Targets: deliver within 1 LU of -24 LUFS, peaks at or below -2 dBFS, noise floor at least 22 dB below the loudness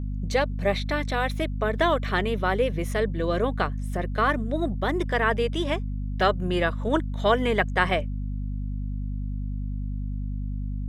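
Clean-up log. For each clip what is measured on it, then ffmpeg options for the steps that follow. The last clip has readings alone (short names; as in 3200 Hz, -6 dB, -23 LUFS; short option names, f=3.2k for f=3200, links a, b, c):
hum 50 Hz; harmonics up to 250 Hz; hum level -27 dBFS; loudness -26.5 LUFS; peak -6.5 dBFS; loudness target -24.0 LUFS
-> -af "bandreject=f=50:t=h:w=4,bandreject=f=100:t=h:w=4,bandreject=f=150:t=h:w=4,bandreject=f=200:t=h:w=4,bandreject=f=250:t=h:w=4"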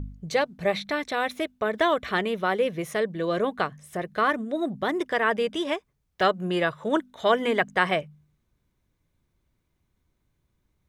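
hum none; loudness -26.0 LUFS; peak -6.5 dBFS; loudness target -24.0 LUFS
-> -af "volume=2dB"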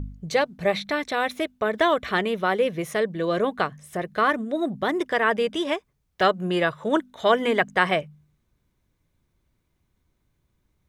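loudness -24.0 LUFS; peak -4.5 dBFS; noise floor -73 dBFS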